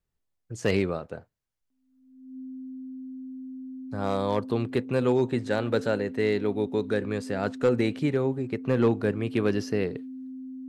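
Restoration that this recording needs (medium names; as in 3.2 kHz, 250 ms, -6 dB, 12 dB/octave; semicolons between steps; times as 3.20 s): clip repair -14.5 dBFS; band-stop 260 Hz, Q 30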